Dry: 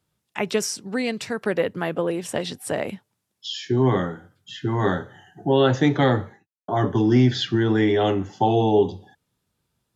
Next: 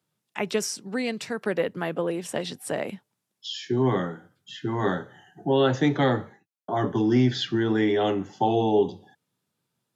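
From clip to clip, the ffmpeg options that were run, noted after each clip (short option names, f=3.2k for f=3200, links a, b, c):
-af "highpass=f=120:w=0.5412,highpass=f=120:w=1.3066,volume=-3dB"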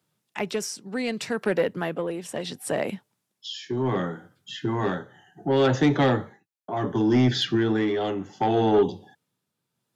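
-af "asoftclip=type=tanh:threshold=-16dB,tremolo=f=0.68:d=0.51,volume=4dB"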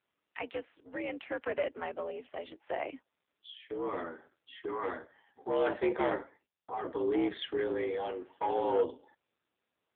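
-af "lowshelf=f=450:g=-4,highpass=f=200:t=q:w=0.5412,highpass=f=200:t=q:w=1.307,lowpass=f=3.1k:t=q:w=0.5176,lowpass=f=3.1k:t=q:w=0.7071,lowpass=f=3.1k:t=q:w=1.932,afreqshift=71,volume=-5.5dB" -ar 8000 -c:a libopencore_amrnb -b:a 5900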